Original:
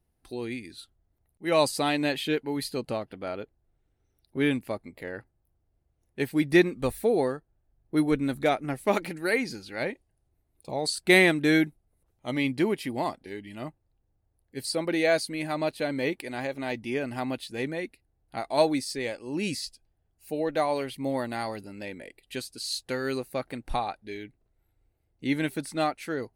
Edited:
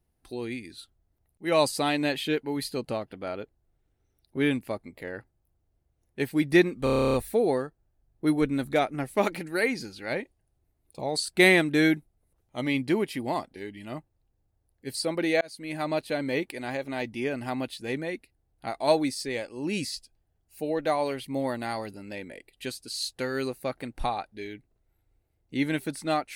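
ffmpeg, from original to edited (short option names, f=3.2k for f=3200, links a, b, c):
-filter_complex "[0:a]asplit=12[a][b][c][d][e][f][g][h][i][j][k][l];[a]atrim=end=6.872[m];[b]atrim=start=6.838:end=6.872[n];[c]atrim=start=6.838:end=6.872[o];[d]atrim=start=6.838:end=6.872[p];[e]atrim=start=6.838:end=6.872[q];[f]atrim=start=6.838:end=6.872[r];[g]atrim=start=6.838:end=6.872[s];[h]atrim=start=6.838:end=6.872[t];[i]atrim=start=6.838:end=6.872[u];[j]atrim=start=6.838:end=6.872[v];[k]atrim=start=6.838:end=15.11,asetpts=PTS-STARTPTS,afade=t=out:st=8.268:d=0.004:c=hsin[w];[l]atrim=start=15.11,asetpts=PTS-STARTPTS,afade=t=in:d=0.4[x];[m][n]acrossfade=d=0.004:c1=hsin:c2=hsin[y];[y][o]acrossfade=d=0.004:c1=hsin:c2=hsin[z];[z][p]acrossfade=d=0.004:c1=hsin:c2=hsin[aa];[aa][q]acrossfade=d=0.004:c1=hsin:c2=hsin[ab];[ab][r]acrossfade=d=0.004:c1=hsin:c2=hsin[ac];[ac][s]acrossfade=d=0.004:c1=hsin:c2=hsin[ad];[ad][t]acrossfade=d=0.004:c1=hsin:c2=hsin[ae];[ae][u]acrossfade=d=0.004:c1=hsin:c2=hsin[af];[af][v]acrossfade=d=0.004:c1=hsin:c2=hsin[ag];[w][x]concat=n=2:v=0:a=1[ah];[ag][ah]acrossfade=d=0.004:c1=hsin:c2=hsin"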